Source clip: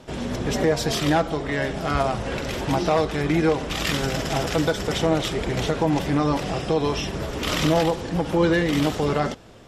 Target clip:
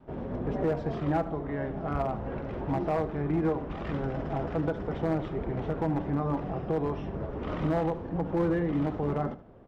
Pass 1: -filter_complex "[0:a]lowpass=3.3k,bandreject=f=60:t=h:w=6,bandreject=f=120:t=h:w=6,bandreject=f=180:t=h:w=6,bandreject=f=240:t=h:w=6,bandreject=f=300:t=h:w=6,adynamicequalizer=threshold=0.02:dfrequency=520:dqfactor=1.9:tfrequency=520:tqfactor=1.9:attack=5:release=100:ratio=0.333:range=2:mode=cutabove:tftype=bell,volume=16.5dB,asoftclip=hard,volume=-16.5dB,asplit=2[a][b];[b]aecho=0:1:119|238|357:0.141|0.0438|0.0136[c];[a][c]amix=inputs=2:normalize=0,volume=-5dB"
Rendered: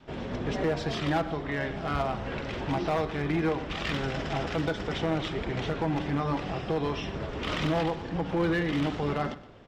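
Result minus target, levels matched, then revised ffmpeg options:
4000 Hz band +16.0 dB; echo 44 ms late
-filter_complex "[0:a]lowpass=1k,bandreject=f=60:t=h:w=6,bandreject=f=120:t=h:w=6,bandreject=f=180:t=h:w=6,bandreject=f=240:t=h:w=6,bandreject=f=300:t=h:w=6,adynamicequalizer=threshold=0.02:dfrequency=520:dqfactor=1.9:tfrequency=520:tqfactor=1.9:attack=5:release=100:ratio=0.333:range=2:mode=cutabove:tftype=bell,volume=16.5dB,asoftclip=hard,volume=-16.5dB,asplit=2[a][b];[b]aecho=0:1:75|150|225:0.141|0.0438|0.0136[c];[a][c]amix=inputs=2:normalize=0,volume=-5dB"

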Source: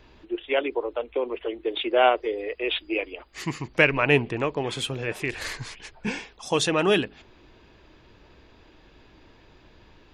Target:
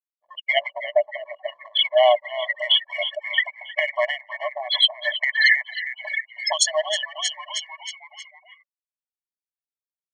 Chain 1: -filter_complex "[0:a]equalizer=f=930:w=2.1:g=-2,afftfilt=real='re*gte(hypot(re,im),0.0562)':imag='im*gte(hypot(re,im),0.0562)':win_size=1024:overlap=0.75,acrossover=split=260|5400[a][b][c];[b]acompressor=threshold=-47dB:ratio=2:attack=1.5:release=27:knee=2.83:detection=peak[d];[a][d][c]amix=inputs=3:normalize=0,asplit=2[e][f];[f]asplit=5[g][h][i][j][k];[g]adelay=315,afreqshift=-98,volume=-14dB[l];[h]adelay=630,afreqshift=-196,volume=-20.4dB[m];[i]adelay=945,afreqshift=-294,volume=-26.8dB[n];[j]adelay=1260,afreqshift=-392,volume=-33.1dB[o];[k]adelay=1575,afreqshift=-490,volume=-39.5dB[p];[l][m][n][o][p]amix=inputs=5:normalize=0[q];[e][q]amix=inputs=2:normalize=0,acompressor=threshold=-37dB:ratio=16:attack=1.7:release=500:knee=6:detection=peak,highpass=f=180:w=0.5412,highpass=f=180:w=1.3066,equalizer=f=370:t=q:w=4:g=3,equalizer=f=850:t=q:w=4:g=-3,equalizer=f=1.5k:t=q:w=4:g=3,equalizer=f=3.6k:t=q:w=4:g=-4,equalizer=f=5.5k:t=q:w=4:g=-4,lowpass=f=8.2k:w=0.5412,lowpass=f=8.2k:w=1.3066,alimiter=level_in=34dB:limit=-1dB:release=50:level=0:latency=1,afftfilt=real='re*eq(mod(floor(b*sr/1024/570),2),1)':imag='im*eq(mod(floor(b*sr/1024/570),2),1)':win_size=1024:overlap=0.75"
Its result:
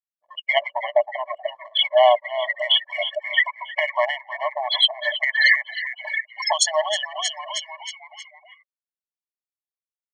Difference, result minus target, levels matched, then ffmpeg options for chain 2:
1000 Hz band +3.5 dB
-filter_complex "[0:a]equalizer=f=930:w=2.1:g=-10.5,afftfilt=real='re*gte(hypot(re,im),0.0562)':imag='im*gte(hypot(re,im),0.0562)':win_size=1024:overlap=0.75,acrossover=split=260|5400[a][b][c];[b]acompressor=threshold=-47dB:ratio=2:attack=1.5:release=27:knee=2.83:detection=peak[d];[a][d][c]amix=inputs=3:normalize=0,asplit=2[e][f];[f]asplit=5[g][h][i][j][k];[g]adelay=315,afreqshift=-98,volume=-14dB[l];[h]adelay=630,afreqshift=-196,volume=-20.4dB[m];[i]adelay=945,afreqshift=-294,volume=-26.8dB[n];[j]adelay=1260,afreqshift=-392,volume=-33.1dB[o];[k]adelay=1575,afreqshift=-490,volume=-39.5dB[p];[l][m][n][o][p]amix=inputs=5:normalize=0[q];[e][q]amix=inputs=2:normalize=0,acompressor=threshold=-37dB:ratio=16:attack=1.7:release=500:knee=6:detection=peak,highpass=f=180:w=0.5412,highpass=f=180:w=1.3066,equalizer=f=370:t=q:w=4:g=3,equalizer=f=850:t=q:w=4:g=-3,equalizer=f=1.5k:t=q:w=4:g=3,equalizer=f=3.6k:t=q:w=4:g=-4,equalizer=f=5.5k:t=q:w=4:g=-4,lowpass=f=8.2k:w=0.5412,lowpass=f=8.2k:w=1.3066,alimiter=level_in=34dB:limit=-1dB:release=50:level=0:latency=1,afftfilt=real='re*eq(mod(floor(b*sr/1024/570),2),1)':imag='im*eq(mod(floor(b*sr/1024/570),2),1)':win_size=1024:overlap=0.75"

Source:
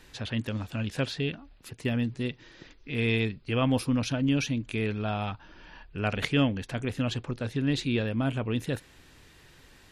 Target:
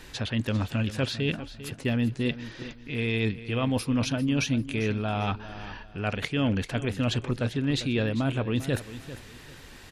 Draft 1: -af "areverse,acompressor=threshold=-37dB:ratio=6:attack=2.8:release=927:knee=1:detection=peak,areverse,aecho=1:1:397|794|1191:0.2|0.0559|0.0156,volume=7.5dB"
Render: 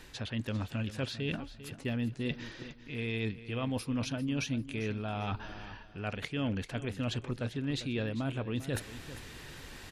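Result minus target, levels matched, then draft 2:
compressor: peak gain reduction +7.5 dB
-af "areverse,acompressor=threshold=-28dB:ratio=6:attack=2.8:release=927:knee=1:detection=peak,areverse,aecho=1:1:397|794|1191:0.2|0.0559|0.0156,volume=7.5dB"

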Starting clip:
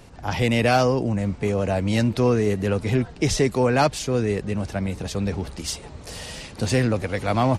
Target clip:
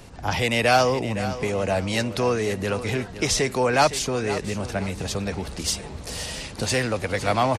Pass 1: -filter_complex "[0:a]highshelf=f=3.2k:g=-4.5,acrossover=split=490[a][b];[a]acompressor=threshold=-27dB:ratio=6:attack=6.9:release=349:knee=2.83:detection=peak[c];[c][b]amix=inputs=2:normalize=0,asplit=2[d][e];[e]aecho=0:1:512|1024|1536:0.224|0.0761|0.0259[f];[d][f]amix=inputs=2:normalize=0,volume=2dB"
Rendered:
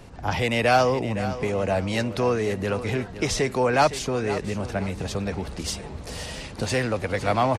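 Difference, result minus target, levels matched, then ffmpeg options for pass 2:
8000 Hz band -5.0 dB
-filter_complex "[0:a]highshelf=f=3.2k:g=2.5,acrossover=split=490[a][b];[a]acompressor=threshold=-27dB:ratio=6:attack=6.9:release=349:knee=2.83:detection=peak[c];[c][b]amix=inputs=2:normalize=0,asplit=2[d][e];[e]aecho=0:1:512|1024|1536:0.224|0.0761|0.0259[f];[d][f]amix=inputs=2:normalize=0,volume=2dB"

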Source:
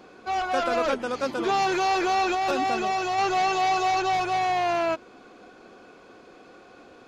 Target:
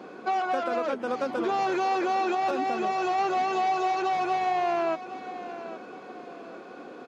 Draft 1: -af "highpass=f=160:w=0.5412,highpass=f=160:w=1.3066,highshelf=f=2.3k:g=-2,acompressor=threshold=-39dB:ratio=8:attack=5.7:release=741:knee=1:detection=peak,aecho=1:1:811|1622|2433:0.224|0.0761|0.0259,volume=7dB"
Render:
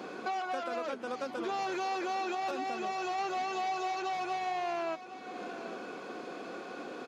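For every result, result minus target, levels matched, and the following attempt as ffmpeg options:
compressor: peak gain reduction +8.5 dB; 4000 Hz band +5.5 dB
-af "highpass=f=160:w=0.5412,highpass=f=160:w=1.3066,highshelf=f=2.3k:g=-2,acompressor=threshold=-30dB:ratio=8:attack=5.7:release=741:knee=1:detection=peak,aecho=1:1:811|1622|2433:0.224|0.0761|0.0259,volume=7dB"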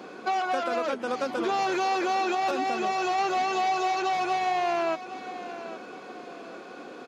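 4000 Hz band +4.5 dB
-af "highpass=f=160:w=0.5412,highpass=f=160:w=1.3066,highshelf=f=2.3k:g=-10,acompressor=threshold=-30dB:ratio=8:attack=5.7:release=741:knee=1:detection=peak,aecho=1:1:811|1622|2433:0.224|0.0761|0.0259,volume=7dB"

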